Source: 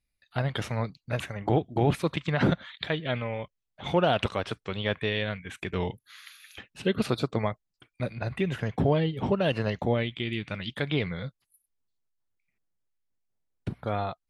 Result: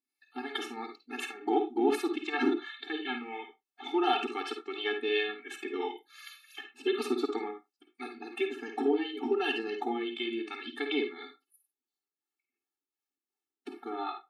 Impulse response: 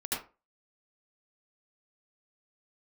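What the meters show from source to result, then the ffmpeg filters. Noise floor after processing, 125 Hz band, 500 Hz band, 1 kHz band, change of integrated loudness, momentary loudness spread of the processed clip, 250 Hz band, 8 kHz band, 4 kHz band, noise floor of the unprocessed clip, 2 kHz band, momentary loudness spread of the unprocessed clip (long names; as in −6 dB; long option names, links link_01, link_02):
below −85 dBFS, below −35 dB, −3.0 dB, −1.5 dB, −3.5 dB, 17 LU, −3.0 dB, −2.0 dB, −2.0 dB, −82 dBFS, −2.0 dB, 13 LU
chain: -filter_complex "[0:a]acrossover=split=410[link_01][link_02];[link_01]aeval=exprs='val(0)*(1-0.7/2+0.7/2*cos(2*PI*2.8*n/s))':channel_layout=same[link_03];[link_02]aeval=exprs='val(0)*(1-0.7/2-0.7/2*cos(2*PI*2.8*n/s))':channel_layout=same[link_04];[link_03][link_04]amix=inputs=2:normalize=0,asplit=2[link_05][link_06];[1:a]atrim=start_sample=2205,afade=type=out:start_time=0.34:duration=0.01,atrim=end_sample=15435,asetrate=66150,aresample=44100[link_07];[link_06][link_07]afir=irnorm=-1:irlink=0,volume=-6.5dB[link_08];[link_05][link_08]amix=inputs=2:normalize=0,afftfilt=real='re*eq(mod(floor(b*sr/1024/230),2),1)':imag='im*eq(mod(floor(b*sr/1024/230),2),1)':win_size=1024:overlap=0.75,volume=2dB"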